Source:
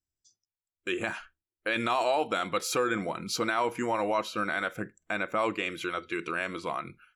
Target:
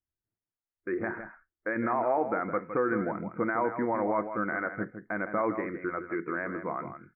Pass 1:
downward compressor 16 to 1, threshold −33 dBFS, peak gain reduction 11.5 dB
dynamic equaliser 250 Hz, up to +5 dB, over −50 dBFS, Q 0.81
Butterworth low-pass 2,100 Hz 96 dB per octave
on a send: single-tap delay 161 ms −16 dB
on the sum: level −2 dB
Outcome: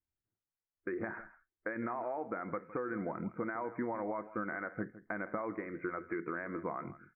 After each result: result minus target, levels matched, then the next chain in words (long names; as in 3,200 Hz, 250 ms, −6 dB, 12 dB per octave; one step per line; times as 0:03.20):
downward compressor: peak gain reduction +11.5 dB; echo-to-direct −6.5 dB
dynamic equaliser 250 Hz, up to +5 dB, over −50 dBFS, Q 0.81
Butterworth low-pass 2,100 Hz 96 dB per octave
on a send: single-tap delay 161 ms −16 dB
on the sum: level −2 dB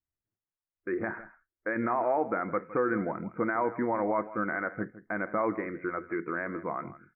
echo-to-direct −6.5 dB
dynamic equaliser 250 Hz, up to +5 dB, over −50 dBFS, Q 0.81
Butterworth low-pass 2,100 Hz 96 dB per octave
on a send: single-tap delay 161 ms −9.5 dB
on the sum: level −2 dB